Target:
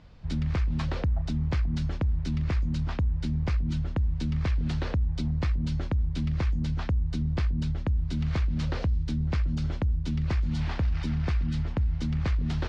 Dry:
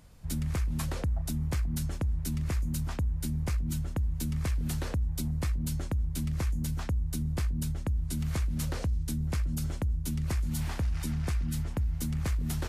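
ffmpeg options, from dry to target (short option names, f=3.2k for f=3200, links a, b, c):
-af "lowpass=f=4.6k:w=0.5412,lowpass=f=4.6k:w=1.3066,volume=3.5dB"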